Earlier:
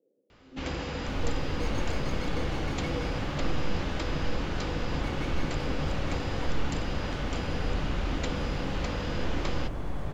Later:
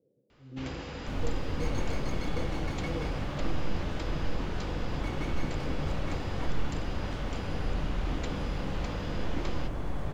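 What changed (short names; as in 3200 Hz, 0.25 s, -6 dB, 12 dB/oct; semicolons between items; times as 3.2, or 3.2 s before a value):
speech: remove HPF 240 Hz 24 dB/oct; first sound -5.5 dB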